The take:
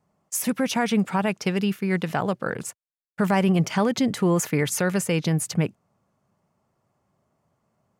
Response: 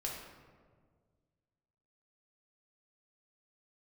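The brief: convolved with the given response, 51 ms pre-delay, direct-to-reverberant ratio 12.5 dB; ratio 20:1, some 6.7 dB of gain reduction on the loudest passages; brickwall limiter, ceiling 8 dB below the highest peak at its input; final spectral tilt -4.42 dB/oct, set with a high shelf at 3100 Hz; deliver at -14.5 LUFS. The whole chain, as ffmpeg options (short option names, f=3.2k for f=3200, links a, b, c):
-filter_complex "[0:a]highshelf=f=3.1k:g=3.5,acompressor=threshold=-23dB:ratio=20,alimiter=limit=-21dB:level=0:latency=1,asplit=2[a][b];[1:a]atrim=start_sample=2205,adelay=51[c];[b][c]afir=irnorm=-1:irlink=0,volume=-13.5dB[d];[a][d]amix=inputs=2:normalize=0,volume=16dB"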